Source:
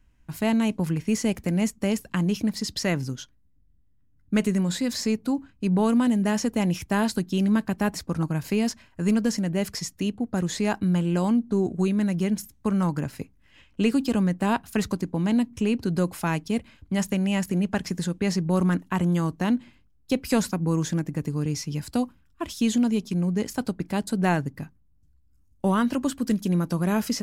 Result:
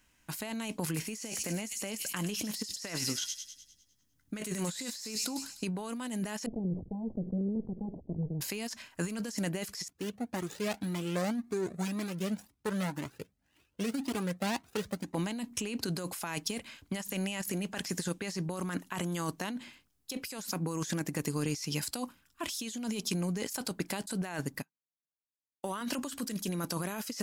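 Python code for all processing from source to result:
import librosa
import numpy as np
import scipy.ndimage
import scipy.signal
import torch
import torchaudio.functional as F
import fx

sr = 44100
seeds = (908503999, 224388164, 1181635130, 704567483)

y = fx.chain(x, sr, fx.doubler(ms=19.0, db=-13.5),
    fx.echo_wet_highpass(ms=101, feedback_pct=52, hz=4100.0, wet_db=-5.5), at=(0.84, 5.64))
y = fx.chain(y, sr, fx.lower_of_two(delay_ms=1.1),
    fx.gaussian_blur(sigma=20.0),
    fx.sustainer(db_per_s=86.0), at=(6.46, 8.41))
y = fx.chain(y, sr, fx.median_filter(points=41),
    fx.highpass(hz=42.0, slope=12),
    fx.comb_cascade(direction='rising', hz=1.9), at=(9.88, 15.15))
y = fx.chain(y, sr, fx.highpass(hz=180.0, slope=12),
    fx.upward_expand(threshold_db=-42.0, expansion=2.5), at=(24.62, 25.81))
y = fx.riaa(y, sr, side='recording')
y = fx.over_compress(y, sr, threshold_db=-33.0, ratio=-1.0)
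y = fx.high_shelf(y, sr, hz=11000.0, db=-11.5)
y = y * 10.0 ** (-1.5 / 20.0)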